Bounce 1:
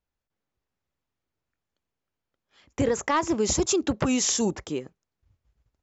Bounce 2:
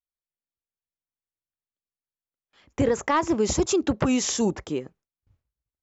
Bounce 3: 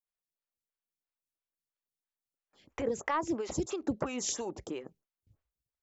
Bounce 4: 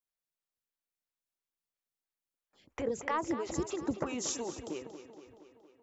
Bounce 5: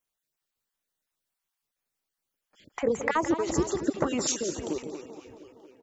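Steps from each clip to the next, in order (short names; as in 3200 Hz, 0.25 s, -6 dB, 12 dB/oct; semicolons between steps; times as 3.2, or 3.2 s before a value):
gate with hold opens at -57 dBFS; high shelf 3800 Hz -6.5 dB; gain +2 dB
compressor 2.5:1, threshold -30 dBFS, peak gain reduction 8.5 dB; photocell phaser 3 Hz
tape echo 0.232 s, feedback 66%, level -10 dB, low-pass 5200 Hz; gain -1.5 dB
random spectral dropouts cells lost 24%; echo 0.168 s -11 dB; gain +8 dB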